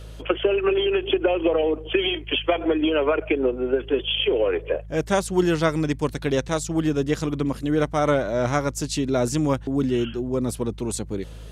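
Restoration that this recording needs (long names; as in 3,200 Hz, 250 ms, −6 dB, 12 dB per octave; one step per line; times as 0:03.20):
hum removal 53.4 Hz, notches 3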